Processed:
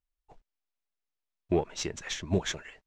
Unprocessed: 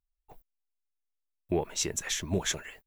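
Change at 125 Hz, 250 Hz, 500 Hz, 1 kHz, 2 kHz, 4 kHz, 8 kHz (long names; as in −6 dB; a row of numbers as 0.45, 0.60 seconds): +2.0, +2.0, +2.0, +1.0, −1.5, −2.5, −7.5 decibels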